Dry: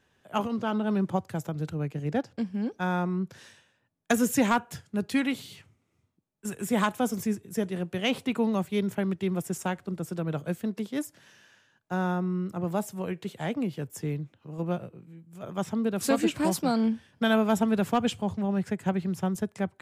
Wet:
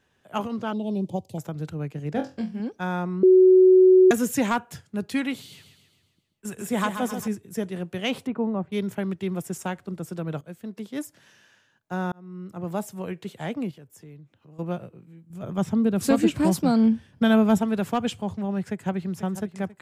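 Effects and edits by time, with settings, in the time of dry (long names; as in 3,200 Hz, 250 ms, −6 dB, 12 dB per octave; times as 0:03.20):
0:00.73–0:01.38: Chebyshev band-stop filter 670–3,300 Hz
0:02.13–0:02.60: flutter between parallel walls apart 3.9 metres, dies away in 0.25 s
0:03.23–0:04.11: beep over 372 Hz −10.5 dBFS
0:05.39–0:07.28: repeating echo 134 ms, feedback 53%, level −8.5 dB
0:08.27–0:08.72: low-pass filter 1,200 Hz
0:10.41–0:11.04: fade in, from −13.5 dB
0:12.12–0:12.75: fade in
0:13.71–0:14.59: downward compressor 2 to 1, threshold −54 dBFS
0:15.30–0:17.58: low-shelf EQ 280 Hz +11 dB
0:18.68–0:19.16: delay throw 490 ms, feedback 50%, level −13 dB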